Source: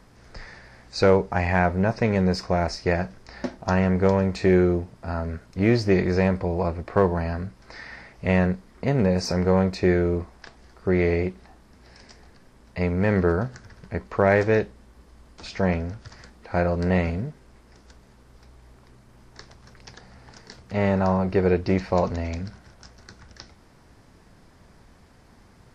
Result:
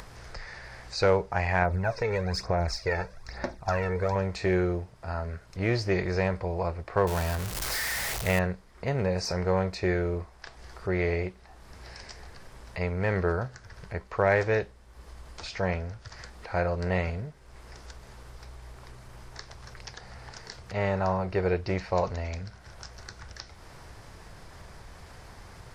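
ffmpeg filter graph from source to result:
-filter_complex "[0:a]asettb=1/sr,asplit=3[s0][s1][s2];[s0]atrim=end=1.624[s3];[s1]atrim=start=1.62:end=4.16,asetpts=PTS-STARTPTS,afade=t=in:d=0.004:c=qsin,afade=t=out:st=2.536:d=0.004:c=qsin,aphaser=in_gain=1:out_gain=1:delay=2.3:decay=0.61:speed=1.1:type=sinusoidal,acompressor=threshold=0.126:ratio=3:attack=3.2:release=140:knee=1:detection=peak,bandreject=f=3000:w=6.5[s4];[s2]atrim=start=4.156[s5];[s3][s4]acrossfade=d=0.004:c1=hsin:c2=qsin[s6];[s6][s5]acrossfade=d=0.004:c1=qsin:c2=hsin,asettb=1/sr,asplit=3[s7][s8][s9];[s7]atrim=end=7.074[s10];[s8]atrim=start=7.07:end=8.39,asetpts=PTS-STARTPTS,afade=t=in:d=0.004:c=qsin,afade=t=out:st=1.316:d=0.004:c=qsin,aeval=exprs='val(0)+0.5*0.0447*sgn(val(0))':c=same,acompressor=mode=upward:threshold=0.0355:ratio=2.5:attack=3.2:release=140:knee=2.83:detection=peak,aemphasis=mode=production:type=cd[s11];[s9]atrim=start=8.386[s12];[s10][s11]acrossfade=d=0.004:c1=hsin:c2=qsin[s13];[s13][s12]acrossfade=d=0.004:c1=qsin:c2=hsin,acompressor=mode=upward:threshold=0.0282:ratio=2.5,equalizer=f=240:t=o:w=1.1:g=-11,volume=0.75"

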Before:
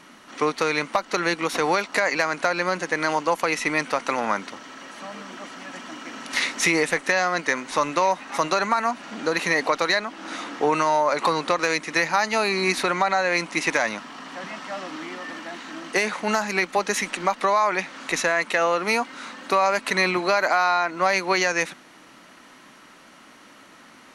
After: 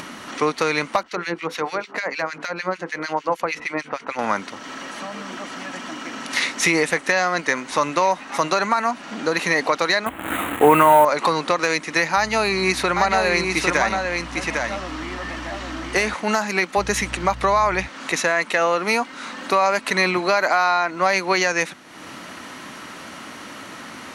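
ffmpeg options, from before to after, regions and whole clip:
-filter_complex "[0:a]asettb=1/sr,asplit=3[s0][s1][s2];[s0]atrim=end=1.034[s3];[s1]atrim=start=1.03:end=4.19,asetpts=PTS-STARTPTS,afade=t=in:d=0.004:c=qsin,afade=t=out:st=3.156:d=0.004:c=qsin,equalizer=f=9600:w=0.89:g=-8.5,bandreject=f=50:t=h:w=6,bandreject=f=100:t=h:w=6,bandreject=f=150:t=h:w=6,bandreject=f=200:t=h:w=6,bandreject=f=250:t=h:w=6,bandreject=f=300:t=h:w=6,bandreject=f=350:t=h:w=6,bandreject=f=400:t=h:w=6,bandreject=f=450:t=h:w=6,bandreject=f=500:t=h:w=6,acrossover=split=1700[s4][s5];[s4]aeval=exprs='val(0)*(1-1/2+1/2*cos(2*PI*6.6*n/s))':c=same[s6];[s5]aeval=exprs='val(0)*(1-1/2-1/2*cos(2*PI*6.6*n/s))':c=same[s7];[s6][s7]amix=inputs=2:normalize=0[s8];[s2]atrim=start=4.186[s9];[s3][s8]acrossfade=d=0.004:c1=hsin:c2=qsin[s10];[s10][s9]acrossfade=d=0.004:c1=qsin:c2=hsin,asettb=1/sr,asplit=3[s11][s12][s13];[s11]atrim=end=10.064[s14];[s12]atrim=start=10.06:end=11.05,asetpts=PTS-STARTPTS,afade=t=in:d=0.004:c=qsin,afade=t=out:st=0.986:d=0.004:c=qsin,acontrast=64,acrusher=bits=5:dc=4:mix=0:aa=0.000001,asuperstop=centerf=5200:order=4:qfactor=0.9[s15];[s13]atrim=start=11.046[s16];[s14][s15]acrossfade=d=0.004:c1=hsin:c2=qsin[s17];[s17][s16]acrossfade=d=0.004:c1=qsin:c2=hsin,asettb=1/sr,asplit=3[s18][s19][s20];[s18]atrim=end=12.164[s21];[s19]atrim=start=12.16:end=16.14,asetpts=PTS-STARTPTS,afade=t=in:d=0.004:c=qsin,afade=t=out:st=3.976:d=0.004:c=qsin,aeval=exprs='val(0)+0.00708*(sin(2*PI*60*n/s)+sin(2*PI*2*60*n/s)/2+sin(2*PI*3*60*n/s)/3+sin(2*PI*4*60*n/s)/4+sin(2*PI*5*60*n/s)/5)':c=same,aecho=1:1:803:0.596,atrim=end_sample=175518[s22];[s20]atrim=start=16.136[s23];[s21][s22]acrossfade=d=0.004:c1=hsin:c2=qsin[s24];[s24][s23]acrossfade=d=0.004:c1=qsin:c2=hsin,asettb=1/sr,asplit=3[s25][s26][s27];[s25]atrim=end=16.774[s28];[s26]atrim=start=16.77:end=17.87,asetpts=PTS-STARTPTS,afade=t=in:d=0.004:c=qsin,afade=t=out:st=1.096:d=0.004:c=qsin,aeval=exprs='val(0)+0.00708*(sin(2*PI*60*n/s)+sin(2*PI*2*60*n/s)/2+sin(2*PI*3*60*n/s)/3+sin(2*PI*4*60*n/s)/4+sin(2*PI*5*60*n/s)/5)':c=same,lowshelf=f=120:g=8[s29];[s27]atrim=start=17.866[s30];[s28][s29]acrossfade=d=0.004:c1=hsin:c2=qsin[s31];[s31][s30]acrossfade=d=0.004:c1=qsin:c2=hsin,highpass=45,equalizer=f=87:t=o:w=1:g=7,acompressor=mode=upward:threshold=0.0398:ratio=2.5,volume=1.26"

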